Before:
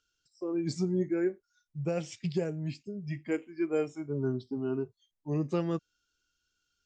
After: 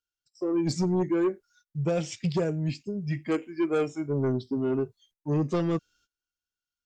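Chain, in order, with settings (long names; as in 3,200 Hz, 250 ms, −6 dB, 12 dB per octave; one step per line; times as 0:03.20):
sine wavefolder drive 5 dB, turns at −18.5 dBFS
noise gate −60 dBFS, range −22 dB
level −2 dB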